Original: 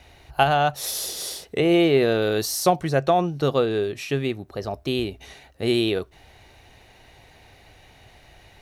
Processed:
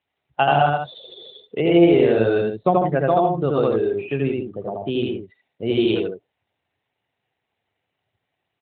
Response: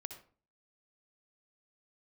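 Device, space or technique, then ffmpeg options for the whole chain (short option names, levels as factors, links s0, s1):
mobile call with aggressive noise cancelling: -filter_complex "[0:a]asplit=3[s0][s1][s2];[s0]afade=t=out:st=2.13:d=0.02[s3];[s1]equalizer=f=130:t=o:w=1.5:g=4.5,afade=t=in:st=2.13:d=0.02,afade=t=out:st=2.79:d=0.02[s4];[s2]afade=t=in:st=2.79:d=0.02[s5];[s3][s4][s5]amix=inputs=3:normalize=0,highpass=100,aecho=1:1:81.63|151.6:0.891|0.501,afftdn=nr=27:nf=-30" -ar 8000 -c:a libopencore_amrnb -b:a 12200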